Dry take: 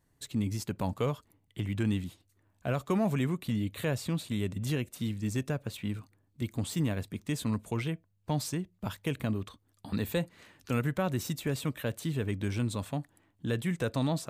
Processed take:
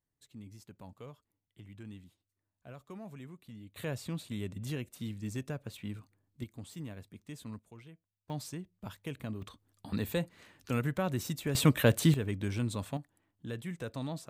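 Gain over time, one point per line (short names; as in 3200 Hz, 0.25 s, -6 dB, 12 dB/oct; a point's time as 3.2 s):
-18 dB
from 3.76 s -6 dB
from 6.44 s -13 dB
from 7.59 s -20 dB
from 8.3 s -8 dB
from 9.42 s -2 dB
from 11.55 s +9 dB
from 12.14 s -2 dB
from 12.97 s -8.5 dB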